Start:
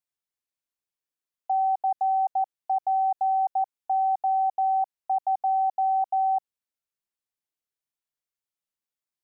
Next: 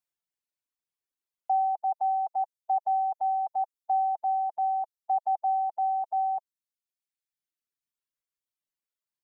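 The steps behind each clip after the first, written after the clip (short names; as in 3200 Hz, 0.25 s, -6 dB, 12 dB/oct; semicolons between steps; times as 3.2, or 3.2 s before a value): reverb removal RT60 1.9 s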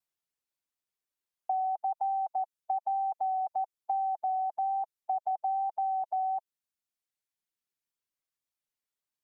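compressor, threshold -28 dBFS, peak gain reduction 6 dB; vibrato 1.1 Hz 28 cents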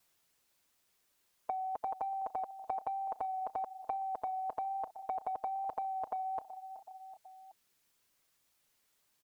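feedback echo 0.376 s, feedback 47%, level -21.5 dB; spectral compressor 2:1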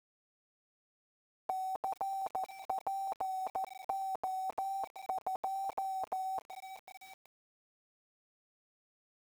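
sample gate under -47.5 dBFS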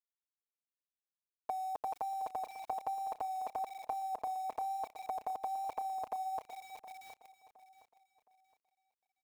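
feedback echo 0.716 s, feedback 34%, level -15 dB; gain -1 dB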